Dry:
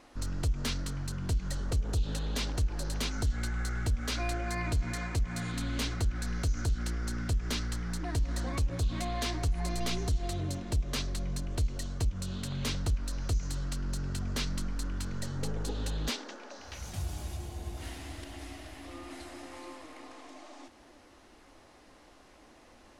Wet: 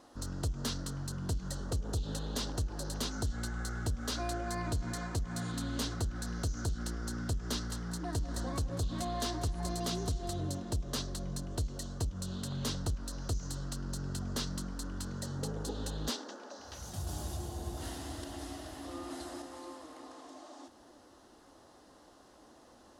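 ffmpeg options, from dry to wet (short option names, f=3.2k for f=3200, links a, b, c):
-filter_complex "[0:a]asettb=1/sr,asplit=3[a][b][c];[a]atrim=end=7.324[d];[b]atrim=start=7.32:end=10.47,asetpts=PTS-STARTPTS,afade=t=in:d=0.004:c=qsin,afade=t=out:st=3.146:d=0.004:c=qsin,aecho=1:1:194:0.158,atrim=end_sample=138915[e];[c]atrim=start=10.466[f];[d][e]acrossfade=d=0.004:c1=hsin:c2=qsin[g];[g][f]acrossfade=d=0.004:c1=qsin:c2=hsin,asplit=3[h][i][j];[h]atrim=end=17.072[k];[i]atrim=start=17.068:end=19.422,asetpts=PTS-STARTPTS,volume=3.5dB[l];[j]atrim=start=19.418[m];[k][l]acrossfade=d=0.004:c1=hsin:c2=hsin[n];[n][m]acrossfade=d=0.004:c1=hsin:c2=hsin,highpass=f=98:p=1,equalizer=f=2.3k:w=2.5:g=-14"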